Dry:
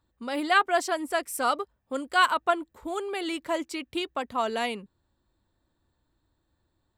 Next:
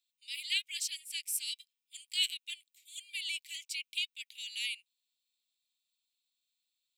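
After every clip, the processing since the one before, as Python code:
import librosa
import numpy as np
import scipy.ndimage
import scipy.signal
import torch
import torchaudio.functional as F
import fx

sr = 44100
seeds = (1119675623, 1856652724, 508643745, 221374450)

y = scipy.signal.sosfilt(scipy.signal.butter(12, 2300.0, 'highpass', fs=sr, output='sos'), x)
y = F.gain(torch.from_numpy(y), 1.0).numpy()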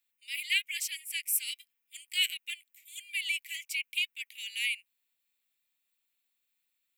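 y = fx.graphic_eq_10(x, sr, hz=(2000, 4000, 8000, 16000), db=(9, -11, -5, 8))
y = F.gain(torch.from_numpy(y), 5.0).numpy()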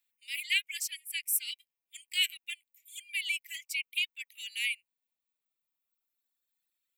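y = fx.dereverb_blind(x, sr, rt60_s=2.0)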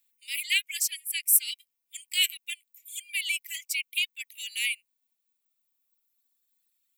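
y = fx.high_shelf(x, sr, hz=3900.0, db=10.0)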